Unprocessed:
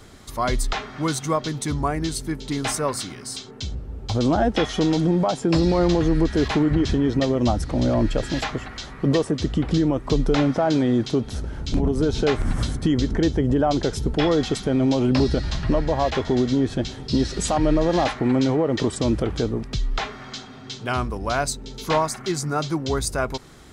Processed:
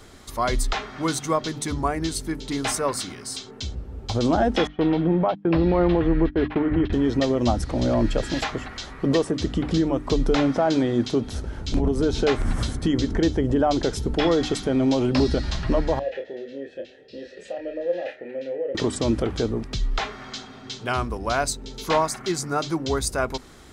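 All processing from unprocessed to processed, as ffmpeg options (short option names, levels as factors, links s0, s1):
-filter_complex "[0:a]asettb=1/sr,asplit=3[s0][s1][s2];[s0]atrim=end=4.674[s3];[s1]atrim=start=4.67:end=6.93,asetpts=PTS-STARTPTS,afade=t=in:d=0.004:c=qsin,afade=t=out:st=2.256:d=0.004:c=qsin,lowpass=f=2900:w=0.5412,lowpass=f=2900:w=1.3066,agate=range=0.02:threshold=0.0631:ratio=16:release=100:detection=peak,acompressor=mode=upward:threshold=0.0158:ratio=2.5:attack=3.2:release=140:knee=2.83:detection=peak[s4];[s2]atrim=start=6.926[s5];[s3][s4]acrossfade=d=0.004:c1=hsin:c2=qsin[s6];[s6][s5]acrossfade=d=0.004:c1=qsin:c2=hsin,asettb=1/sr,asplit=3[s7][s8][s9];[s7]atrim=end=15.994[s10];[s8]atrim=start=15.99:end=18.75,asetpts=PTS-STARTPTS,afade=t=in:d=0.004:c=qsin,afade=t=out:st=2.756:d=0.004:c=qsin,asplit=3[s11][s12][s13];[s11]bandpass=f=530:t=q:w=8,volume=1[s14];[s12]bandpass=f=1840:t=q:w=8,volume=0.501[s15];[s13]bandpass=f=2480:t=q:w=8,volume=0.355[s16];[s14][s15][s16]amix=inputs=3:normalize=0,asplit=2[s17][s18];[s18]adelay=29,volume=0.501[s19];[s17][s19]amix=inputs=2:normalize=0,atrim=end_sample=121716[s20];[s9]atrim=start=18.746[s21];[s10][s20]acrossfade=d=0.004:c1=hsin:c2=qsin[s22];[s22][s21]acrossfade=d=0.004:c1=qsin:c2=hsin,equalizer=f=140:w=3:g=-4.5,bandreject=f=50:t=h:w=6,bandreject=f=100:t=h:w=6,bandreject=f=150:t=h:w=6,bandreject=f=200:t=h:w=6,bandreject=f=250:t=h:w=6,bandreject=f=300:t=h:w=6"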